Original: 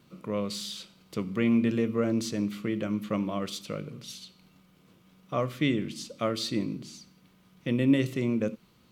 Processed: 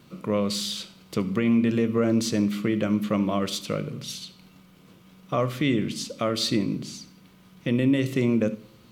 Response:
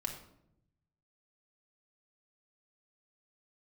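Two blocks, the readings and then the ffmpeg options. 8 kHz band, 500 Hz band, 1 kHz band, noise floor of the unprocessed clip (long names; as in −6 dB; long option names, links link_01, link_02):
+6.5 dB, +4.5 dB, +4.5 dB, −62 dBFS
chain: -filter_complex "[0:a]alimiter=limit=-20dB:level=0:latency=1:release=179,asplit=2[link_01][link_02];[1:a]atrim=start_sample=2205,adelay=70[link_03];[link_02][link_03]afir=irnorm=-1:irlink=0,volume=-20dB[link_04];[link_01][link_04]amix=inputs=2:normalize=0,volume=7dB"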